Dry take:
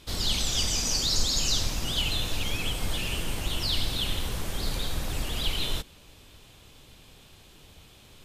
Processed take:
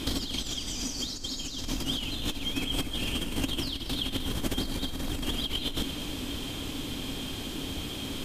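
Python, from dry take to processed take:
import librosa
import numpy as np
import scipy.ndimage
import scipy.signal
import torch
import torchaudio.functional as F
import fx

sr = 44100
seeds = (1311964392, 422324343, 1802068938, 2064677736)

p1 = fx.over_compress(x, sr, threshold_db=-38.0, ratio=-1.0)
p2 = fx.small_body(p1, sr, hz=(270.0, 3200.0), ring_ms=45, db=14)
p3 = p2 + fx.echo_single(p2, sr, ms=234, db=-12.0, dry=0)
y = p3 * 10.0 ** (4.0 / 20.0)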